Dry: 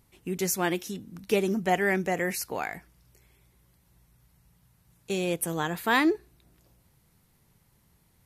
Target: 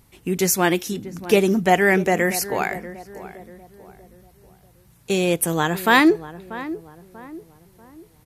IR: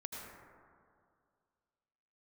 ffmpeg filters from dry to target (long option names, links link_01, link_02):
-filter_complex "[0:a]asplit=2[link_01][link_02];[link_02]adelay=639,lowpass=frequency=1200:poles=1,volume=-14dB,asplit=2[link_03][link_04];[link_04]adelay=639,lowpass=frequency=1200:poles=1,volume=0.43,asplit=2[link_05][link_06];[link_06]adelay=639,lowpass=frequency=1200:poles=1,volume=0.43,asplit=2[link_07][link_08];[link_08]adelay=639,lowpass=frequency=1200:poles=1,volume=0.43[link_09];[link_01][link_03][link_05][link_07][link_09]amix=inputs=5:normalize=0,volume=8.5dB"